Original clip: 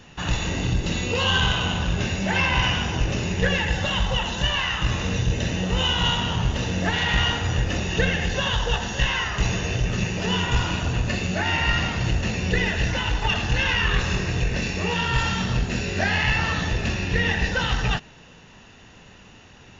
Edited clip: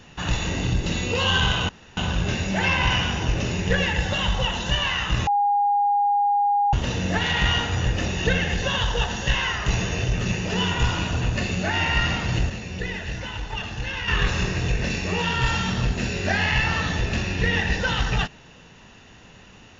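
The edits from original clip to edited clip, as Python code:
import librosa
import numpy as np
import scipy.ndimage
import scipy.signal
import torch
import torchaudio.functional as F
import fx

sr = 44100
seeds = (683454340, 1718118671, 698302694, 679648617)

y = fx.edit(x, sr, fx.insert_room_tone(at_s=1.69, length_s=0.28),
    fx.bleep(start_s=4.99, length_s=1.46, hz=815.0, db=-17.0),
    fx.clip_gain(start_s=12.22, length_s=1.58, db=-7.5), tone=tone)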